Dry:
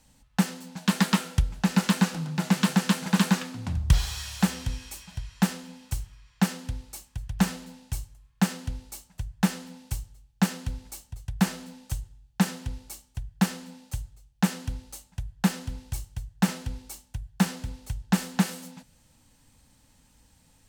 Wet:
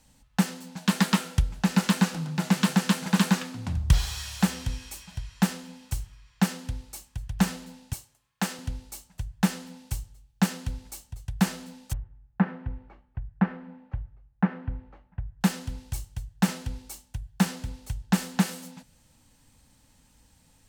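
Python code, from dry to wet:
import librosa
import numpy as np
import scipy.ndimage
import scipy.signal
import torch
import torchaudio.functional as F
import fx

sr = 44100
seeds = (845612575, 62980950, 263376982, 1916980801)

y = fx.bessel_highpass(x, sr, hz=300.0, order=2, at=(7.93, 8.59))
y = fx.lowpass(y, sr, hz=1900.0, slope=24, at=(11.93, 15.41))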